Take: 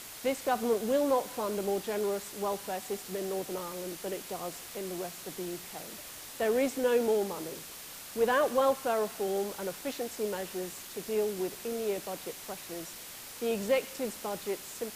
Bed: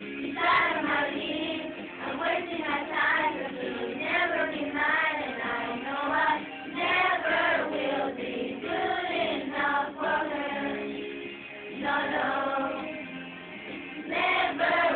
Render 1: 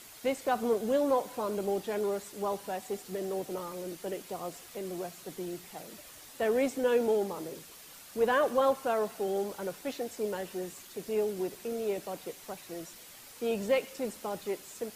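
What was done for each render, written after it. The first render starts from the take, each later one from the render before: noise reduction 7 dB, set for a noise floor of -46 dBFS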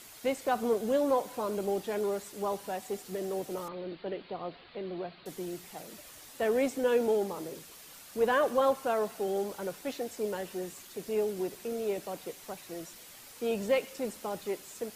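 3.68–5.26 s: steep low-pass 4.5 kHz 96 dB/octave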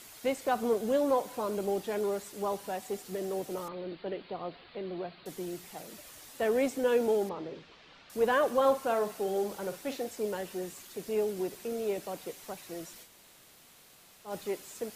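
7.29–8.10 s: low-pass 4 kHz 24 dB/octave; 8.60–10.09 s: doubling 48 ms -11 dB; 13.06–14.29 s: room tone, crossfade 0.10 s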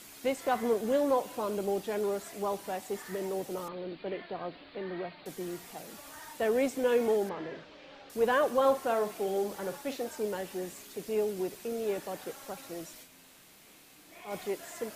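add bed -24.5 dB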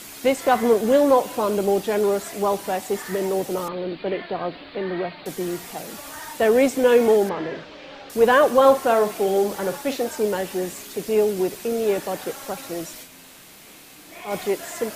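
trim +11 dB

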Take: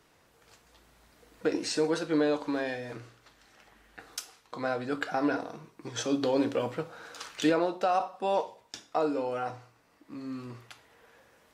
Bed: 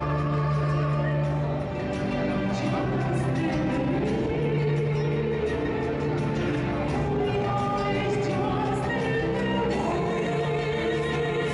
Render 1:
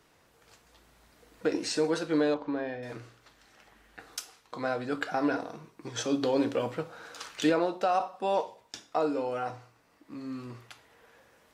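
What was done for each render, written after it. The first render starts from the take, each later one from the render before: 2.34–2.83 s: tape spacing loss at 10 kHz 29 dB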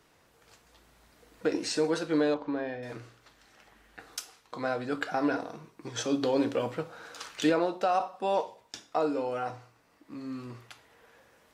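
no audible change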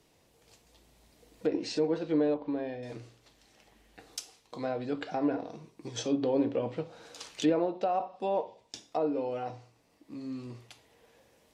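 low-pass that closes with the level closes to 2 kHz, closed at -24.5 dBFS; peaking EQ 1.4 kHz -11.5 dB 1 oct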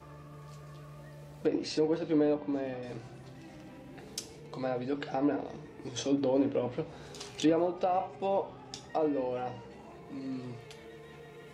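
add bed -24 dB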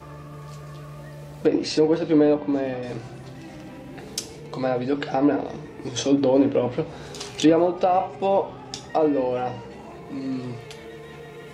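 trim +9.5 dB

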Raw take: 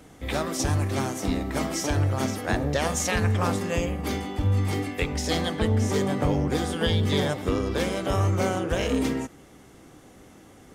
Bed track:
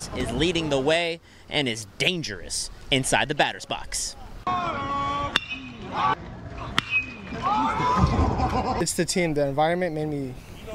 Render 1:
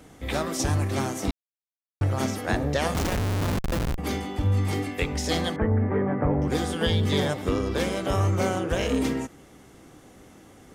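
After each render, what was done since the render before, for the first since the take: 1.31–2.01 s: mute; 2.94–3.98 s: Schmitt trigger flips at -22 dBFS; 5.56–6.42 s: steep low-pass 2 kHz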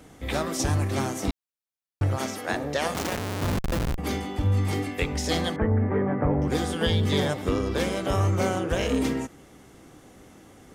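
2.16–3.41 s: high-pass 430 Hz -> 200 Hz 6 dB/octave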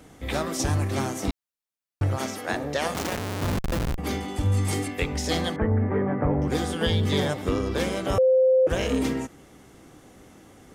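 4.28–4.88 s: peaking EQ 8.7 kHz +11.5 dB 1.1 oct; 8.18–8.67 s: bleep 519 Hz -15 dBFS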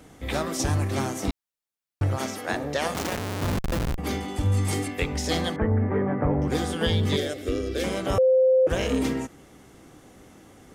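7.16–7.84 s: static phaser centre 390 Hz, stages 4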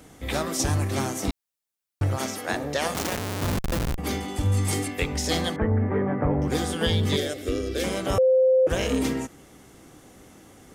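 treble shelf 5 kHz +5 dB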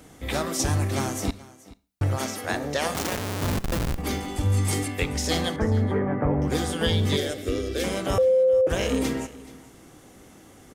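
delay 429 ms -20 dB; Schroeder reverb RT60 0.38 s, combs from 28 ms, DRR 18 dB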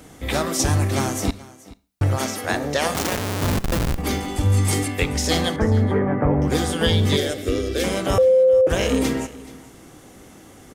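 trim +4.5 dB

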